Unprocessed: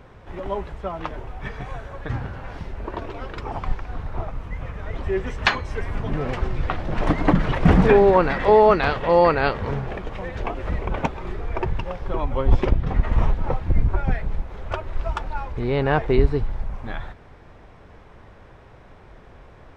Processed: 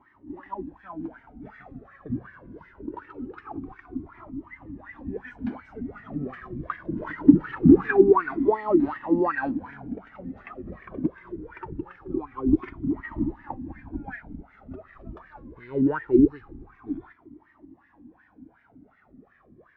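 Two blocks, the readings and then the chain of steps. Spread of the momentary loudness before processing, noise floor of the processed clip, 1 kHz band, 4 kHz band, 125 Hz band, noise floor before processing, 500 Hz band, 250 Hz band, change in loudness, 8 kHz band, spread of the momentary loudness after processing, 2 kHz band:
17 LU, -61 dBFS, -9.5 dB, under -25 dB, -11.0 dB, -47 dBFS, -5.5 dB, +3.5 dB, -1.5 dB, n/a, 22 LU, -7.5 dB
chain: resonant low shelf 390 Hz +9.5 dB, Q 3; wah 2.7 Hz 250–1900 Hz, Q 7.6; cascading flanger falling 0.23 Hz; gain +7.5 dB

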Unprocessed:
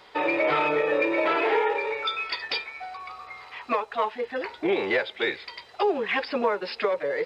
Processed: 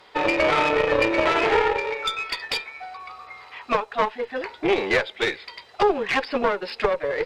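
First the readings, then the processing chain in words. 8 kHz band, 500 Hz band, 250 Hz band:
n/a, +2.5 dB, +2.5 dB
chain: added harmonics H 2 -7 dB, 7 -28 dB, 8 -33 dB, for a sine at -12.5 dBFS; gain +3 dB

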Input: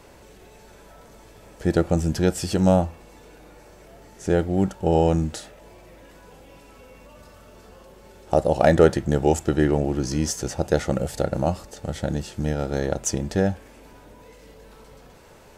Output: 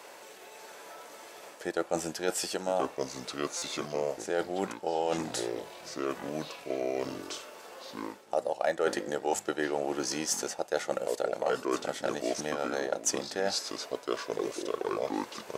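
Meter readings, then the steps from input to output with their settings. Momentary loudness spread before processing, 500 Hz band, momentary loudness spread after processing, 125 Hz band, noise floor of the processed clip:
10 LU, -7.0 dB, 13 LU, -23.0 dB, -50 dBFS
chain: transient shaper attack +3 dB, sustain -2 dB; echoes that change speed 0.572 s, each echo -4 st, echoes 3, each echo -6 dB; HPF 560 Hz 12 dB/oct; reverse; compressor 4:1, threshold -31 dBFS, peak gain reduction 16.5 dB; reverse; stuck buffer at 3.57, samples 256, times 8; gain +3.5 dB

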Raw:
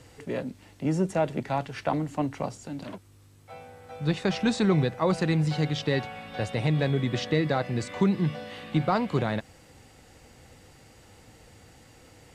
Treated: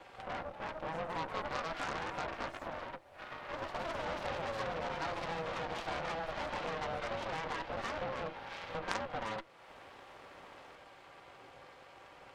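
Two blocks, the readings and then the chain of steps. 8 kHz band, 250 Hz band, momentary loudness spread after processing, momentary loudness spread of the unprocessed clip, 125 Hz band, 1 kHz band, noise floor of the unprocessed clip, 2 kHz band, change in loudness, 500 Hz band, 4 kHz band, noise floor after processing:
-10.0 dB, -20.5 dB, 17 LU, 14 LU, -22.0 dB, -4.5 dB, -55 dBFS, -5.0 dB, -11.5 dB, -10.5 dB, -8.0 dB, -57 dBFS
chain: minimum comb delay 4.7 ms; notch 2100 Hz, Q 8.2; echoes that change speed 0.369 s, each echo +3 st, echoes 3; in parallel at +1.5 dB: limiter -22 dBFS, peak gain reduction 11.5 dB; on the sum: compressor 2:1, threshold -39 dBFS, peak gain reduction 13 dB; ring modulator 330 Hz; three-band isolator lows -14 dB, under 490 Hz, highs -22 dB, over 3200 Hz; on a send: reverse echo 52 ms -11 dB; on the sum: added harmonics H 3 -6 dB, 5 -14 dB, 7 -31 dB, 8 -27 dB, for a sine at -24.5 dBFS; gain +11 dB

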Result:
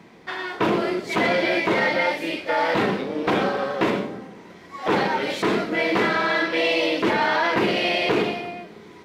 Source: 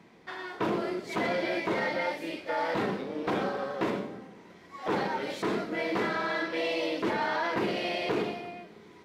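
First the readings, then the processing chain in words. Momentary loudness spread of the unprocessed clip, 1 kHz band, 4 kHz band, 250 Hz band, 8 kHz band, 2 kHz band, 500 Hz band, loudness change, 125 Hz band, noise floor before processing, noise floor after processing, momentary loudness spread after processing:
11 LU, +8.5 dB, +11.0 dB, +8.0 dB, +8.5 dB, +10.5 dB, +8.0 dB, +9.0 dB, +8.0 dB, -53 dBFS, -45 dBFS, 11 LU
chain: dynamic EQ 2700 Hz, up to +4 dB, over -47 dBFS, Q 1.2; gain +8 dB

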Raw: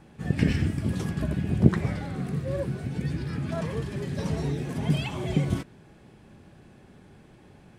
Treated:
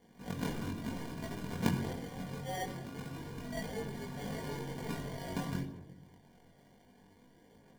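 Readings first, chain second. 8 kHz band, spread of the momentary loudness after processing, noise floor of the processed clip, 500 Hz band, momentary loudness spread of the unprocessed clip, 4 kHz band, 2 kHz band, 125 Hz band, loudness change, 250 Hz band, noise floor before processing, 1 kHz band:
-2.5 dB, 9 LU, -63 dBFS, -9.0 dB, 9 LU, -6.5 dB, -7.0 dB, -14.5 dB, -11.5 dB, -11.0 dB, -54 dBFS, -2.5 dB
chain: median filter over 25 samples; RIAA curve recording; sample-and-hold 34×; pre-echo 0.105 s -20 dB; shoebox room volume 3300 m³, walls furnished, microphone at 1.8 m; chorus voices 2, 0.26 Hz, delay 21 ms, depth 1.6 ms; gain -2.5 dB

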